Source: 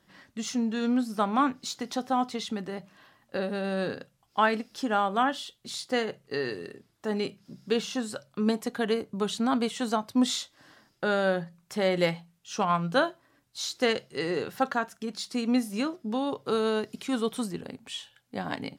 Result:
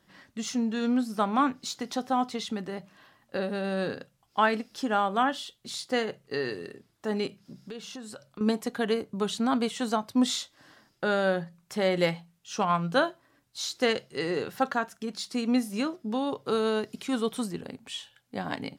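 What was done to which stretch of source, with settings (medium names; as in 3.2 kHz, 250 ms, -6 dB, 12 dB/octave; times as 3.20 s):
7.27–8.41 s: compression 4:1, threshold -39 dBFS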